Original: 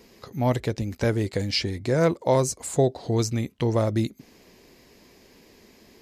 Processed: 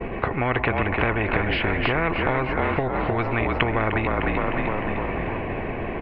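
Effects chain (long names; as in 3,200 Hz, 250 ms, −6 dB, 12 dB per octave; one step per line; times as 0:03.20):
parametric band 270 Hz −5.5 dB 0.79 octaves
comb filter 2.7 ms, depth 38%
echo with shifted repeats 304 ms, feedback 50%, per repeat −41 Hz, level −8.5 dB
downward expander −50 dBFS
on a send at −22.5 dB: convolution reverb RT60 4.5 s, pre-delay 77 ms
on the sum: downward compressor 6 to 1, threshold −30 dBFS, peak gain reduction 13.5 dB
elliptic low-pass filter 2,600 Hz, stop band 60 dB
spectral tilt −3.5 dB per octave
every bin compressed towards the loudest bin 4 to 1
level +8 dB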